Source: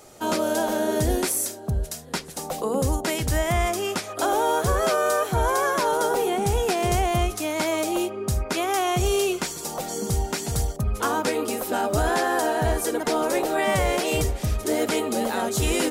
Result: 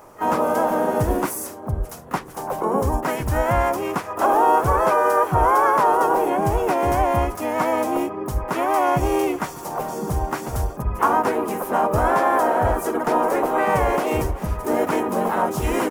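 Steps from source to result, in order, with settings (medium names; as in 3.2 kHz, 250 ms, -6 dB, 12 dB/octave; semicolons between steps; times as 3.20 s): harmony voices -4 st -3 dB, +5 st -12 dB, +12 st -16 dB; ten-band graphic EQ 1 kHz +9 dB, 4 kHz -12 dB, 8 kHz -7 dB; trim -1 dB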